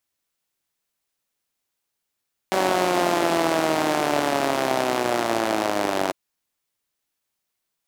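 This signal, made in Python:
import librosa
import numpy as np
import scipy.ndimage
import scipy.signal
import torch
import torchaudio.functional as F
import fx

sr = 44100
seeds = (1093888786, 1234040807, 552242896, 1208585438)

y = fx.engine_four_rev(sr, seeds[0], length_s=3.6, rpm=5700, resonances_hz=(350.0, 620.0), end_rpm=2800)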